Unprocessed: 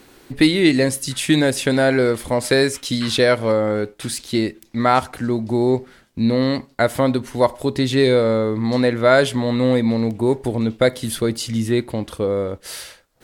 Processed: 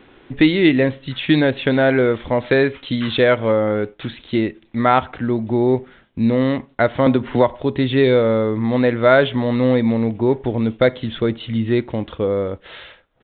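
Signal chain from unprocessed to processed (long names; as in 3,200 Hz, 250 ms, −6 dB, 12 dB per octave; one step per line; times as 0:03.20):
downsampling to 8,000 Hz
0:07.06–0:07.57: multiband upward and downward compressor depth 100%
level +1 dB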